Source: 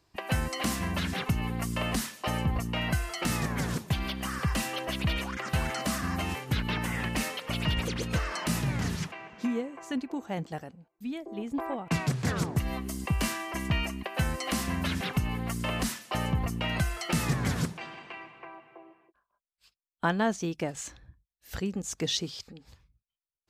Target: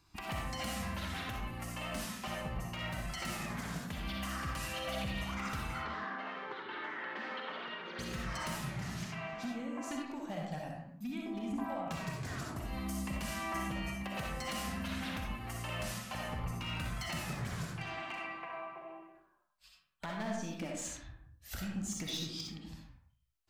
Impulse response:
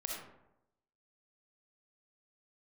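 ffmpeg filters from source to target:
-filter_complex "[0:a]equalizer=f=430:t=o:w=0.62:g=-9.5,acompressor=threshold=-39dB:ratio=6,flanger=delay=0.8:depth=4.7:regen=-39:speed=0.18:shape=sinusoidal,aeval=exprs='0.0126*(abs(mod(val(0)/0.0126+3,4)-2)-1)':c=same,asettb=1/sr,asplit=3[a][b][c];[a]atrim=end=5.744[d];[b]atrim=start=5.74:end=7.99,asetpts=PTS-STARTPTS,afade=t=in:d=0.004:c=qsin,afade=t=out:st=2.246:d=0.004:c=qsin,highpass=f=270:w=0.5412,highpass=f=270:w=1.3066,equalizer=f=280:t=q:w=4:g=-4,equalizer=f=410:t=q:w=4:g=8,equalizer=f=660:t=q:w=4:g=-4,equalizer=f=950:t=q:w=4:g=3,equalizer=f=1.5k:t=q:w=4:g=6,equalizer=f=2.6k:t=q:w=4:g=-8,lowpass=f=3.5k:w=0.5412,lowpass=f=3.5k:w=1.3066[e];[c]atrim=start=7.986[f];[d][e]acrossfade=d=0.004:c1=hsin:c2=qsin[g];[g][f]acrossfade=d=0.004:c1=qsin:c2=hsin[h];[1:a]atrim=start_sample=2205,afade=t=out:st=0.41:d=0.01,atrim=end_sample=18522[i];[h][i]afir=irnorm=-1:irlink=0,volume=7dB"

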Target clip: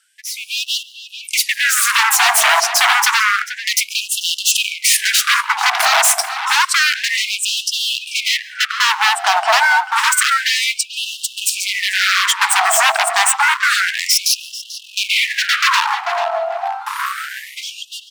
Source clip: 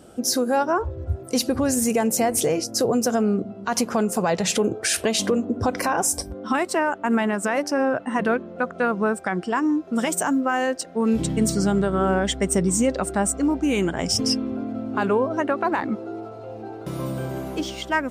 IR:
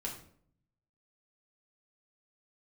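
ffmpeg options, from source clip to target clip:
-filter_complex "[0:a]highpass=f=360:p=1,tiltshelf=f=790:g=8.5,acontrast=60,aeval=exprs='0.1*(abs(mod(val(0)/0.1+3,4)-2)-1)':c=same,dynaudnorm=f=110:g=11:m=15.5dB,asplit=2[a][b];[b]adelay=440,lowpass=f=2.8k:p=1,volume=-8.5dB,asplit=2[c][d];[d]adelay=440,lowpass=f=2.8k:p=1,volume=0.24,asplit=2[e][f];[f]adelay=440,lowpass=f=2.8k:p=1,volume=0.24[g];[a][c][e][g]amix=inputs=4:normalize=0,asplit=2[h][i];[1:a]atrim=start_sample=2205,adelay=136[j];[i][j]afir=irnorm=-1:irlink=0,volume=-22dB[k];[h][k]amix=inputs=2:normalize=0,afftfilt=real='re*gte(b*sr/1024,610*pow(2700/610,0.5+0.5*sin(2*PI*0.29*pts/sr)))':imag='im*gte(b*sr/1024,610*pow(2700/610,0.5+0.5*sin(2*PI*0.29*pts/sr)))':win_size=1024:overlap=0.75,volume=-1dB"

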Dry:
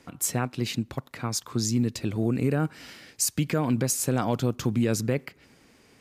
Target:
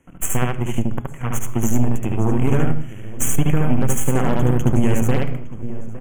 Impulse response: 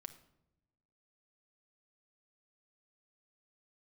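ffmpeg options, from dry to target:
-filter_complex "[0:a]asplit=2[a][b];[b]adelay=859,lowpass=f=1.6k:p=1,volume=-8dB,asplit=2[c][d];[d]adelay=859,lowpass=f=1.6k:p=1,volume=0.32,asplit=2[e][f];[f]adelay=859,lowpass=f=1.6k:p=1,volume=0.32,asplit=2[g][h];[h]adelay=859,lowpass=f=1.6k:p=1,volume=0.32[i];[c][e][g][i]amix=inputs=4:normalize=0[j];[a][j]amix=inputs=2:normalize=0,aeval=exprs='0.251*(cos(1*acos(clip(val(0)/0.251,-1,1)))-cos(1*PI/2))+0.00794*(cos(2*acos(clip(val(0)/0.251,-1,1)))-cos(2*PI/2))+0.0398*(cos(3*acos(clip(val(0)/0.251,-1,1)))-cos(3*PI/2))+0.0224*(cos(6*acos(clip(val(0)/0.251,-1,1)))-cos(6*PI/2))+0.01*(cos(7*acos(clip(val(0)/0.251,-1,1)))-cos(7*PI/2))':c=same,asuperstop=centerf=4500:order=12:qfactor=1.6,asoftclip=type=hard:threshold=-15dB,lowshelf=f=160:g=11.5,bandreject=f=206.7:t=h:w=4,bandreject=f=413.4:t=h:w=4,bandreject=f=620.1:t=h:w=4,bandreject=f=826.8:t=h:w=4,bandreject=f=1.0335k:t=h:w=4,bandreject=f=1.2402k:t=h:w=4,bandreject=f=1.4469k:t=h:w=4,bandreject=f=1.6536k:t=h:w=4,bandreject=f=1.8603k:t=h:w=4,bandreject=f=2.067k:t=h:w=4,bandreject=f=2.2737k:t=h:w=4,bandreject=f=2.4804k:t=h:w=4,bandreject=f=2.6871k:t=h:w=4,bandreject=f=2.8938k:t=h:w=4,bandreject=f=3.1005k:t=h:w=4,bandreject=f=3.3072k:t=h:w=4,bandreject=f=3.5139k:t=h:w=4,bandreject=f=3.7206k:t=h:w=4,bandreject=f=3.9273k:t=h:w=4,bandreject=f=4.134k:t=h:w=4,bandreject=f=4.3407k:t=h:w=4,bandreject=f=4.5474k:t=h:w=4,bandreject=f=4.7541k:t=h:w=4,bandreject=f=4.9608k:t=h:w=4,bandreject=f=5.1675k:t=h:w=4,bandreject=f=5.3742k:t=h:w=4,asplit=2[k][l];[1:a]atrim=start_sample=2205,afade=t=out:st=0.23:d=0.01,atrim=end_sample=10584,adelay=73[m];[l][m]afir=irnorm=-1:irlink=0,volume=3.5dB[n];[k][n]amix=inputs=2:normalize=0,acompressor=threshold=-16dB:ratio=2.5,volume=6dB"

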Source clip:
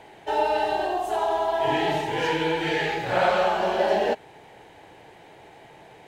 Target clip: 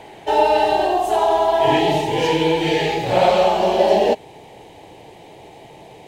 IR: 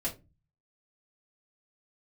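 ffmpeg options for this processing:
-af "asetnsamples=n=441:p=0,asendcmd='1.79 equalizer g -15',equalizer=f=1.5k:w=2:g=-6,volume=8.5dB"

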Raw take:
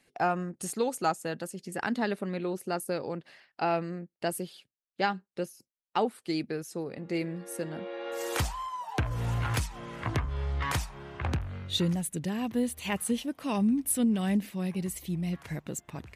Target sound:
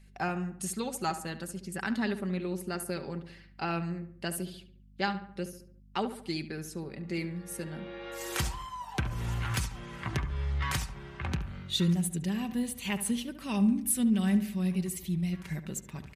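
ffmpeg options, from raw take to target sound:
-filter_complex "[0:a]aeval=exprs='val(0)+0.002*(sin(2*PI*50*n/s)+sin(2*PI*2*50*n/s)/2+sin(2*PI*3*50*n/s)/3+sin(2*PI*4*50*n/s)/4+sin(2*PI*5*50*n/s)/5)':c=same,equalizer=f=600:t=o:w=1.8:g=-7.5,aecho=1:1:5.2:0.41,asplit=2[a][b];[b]adelay=71,lowpass=f=2.3k:p=1,volume=-11dB,asplit=2[c][d];[d]adelay=71,lowpass=f=2.3k:p=1,volume=0.5,asplit=2[e][f];[f]adelay=71,lowpass=f=2.3k:p=1,volume=0.5,asplit=2[g][h];[h]adelay=71,lowpass=f=2.3k:p=1,volume=0.5,asplit=2[i][j];[j]adelay=71,lowpass=f=2.3k:p=1,volume=0.5[k];[c][e][g][i][k]amix=inputs=5:normalize=0[l];[a][l]amix=inputs=2:normalize=0"

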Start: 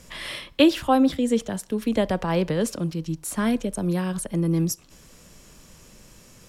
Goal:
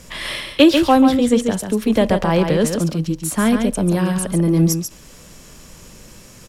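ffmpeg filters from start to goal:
-filter_complex "[0:a]aecho=1:1:140:0.473,asplit=2[a][b];[b]asoftclip=type=hard:threshold=-19.5dB,volume=-10dB[c];[a][c]amix=inputs=2:normalize=0,volume=4.5dB"

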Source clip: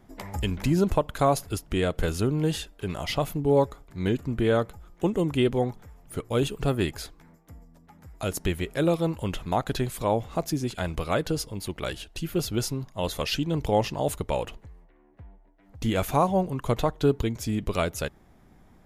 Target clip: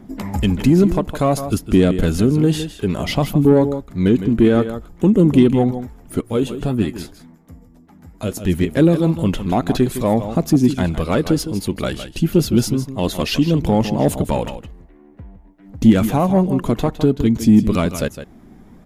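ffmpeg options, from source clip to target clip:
-filter_complex "[0:a]alimiter=limit=-14.5dB:level=0:latency=1:release=299,aphaser=in_gain=1:out_gain=1:delay=3.1:decay=0.25:speed=0.57:type=triangular,aecho=1:1:160:0.251,asettb=1/sr,asplit=3[a][b][c];[a]atrim=end=6.214[d];[b]atrim=start=6.21:end=8.54,asetpts=PTS-STARTPTS,afade=t=in:d=0.004:c=qsin,afade=t=out:st=2.326:d=0.004:c=qsin,flanger=delay=8:depth=4.2:regen=53:speed=1.9:shape=triangular[e];[c]atrim=start=8.536[f];[d][e]acrossfade=d=0.004:c1=hsin:c2=qsin[g];[g][f]acrossfade=d=0.004:c1=qsin:c2=hsin,asoftclip=type=tanh:threshold=-16.5dB,equalizer=f=230:t=o:w=1.2:g=12,volume=6dB"

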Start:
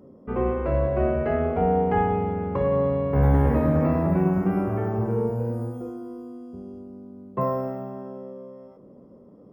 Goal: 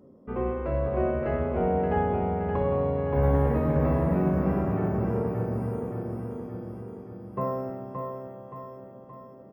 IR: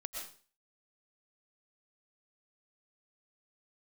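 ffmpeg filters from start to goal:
-af "aecho=1:1:573|1146|1719|2292|2865|3438|4011:0.562|0.304|0.164|0.0885|0.0478|0.0258|0.0139,volume=-4.5dB"

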